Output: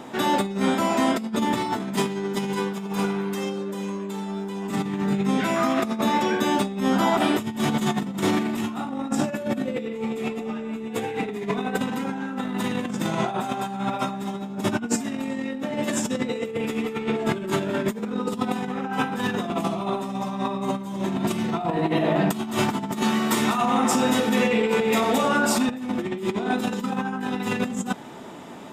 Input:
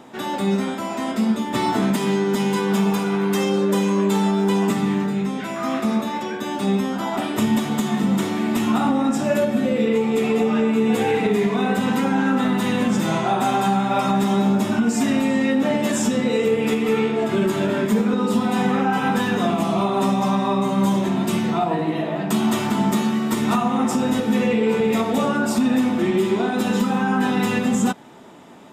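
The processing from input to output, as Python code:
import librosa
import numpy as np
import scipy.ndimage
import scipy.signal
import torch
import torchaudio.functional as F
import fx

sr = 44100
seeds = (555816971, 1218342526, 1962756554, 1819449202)

y = fx.low_shelf(x, sr, hz=340.0, db=-10.0, at=(23.03, 25.69))
y = fx.over_compress(y, sr, threshold_db=-24.0, ratio=-0.5)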